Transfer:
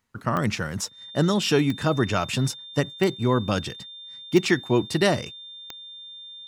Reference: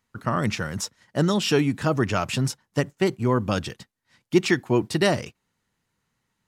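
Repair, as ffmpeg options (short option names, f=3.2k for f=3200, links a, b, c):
-af "adeclick=t=4,bandreject=f=3.6k:w=30"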